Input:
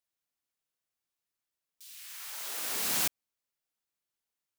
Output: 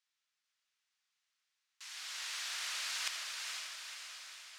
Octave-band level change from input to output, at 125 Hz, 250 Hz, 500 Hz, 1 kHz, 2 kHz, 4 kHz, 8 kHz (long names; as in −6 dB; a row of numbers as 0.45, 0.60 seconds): below −40 dB, below −30 dB, −15.0 dB, −4.0 dB, +1.0 dB, +1.0 dB, −5.5 dB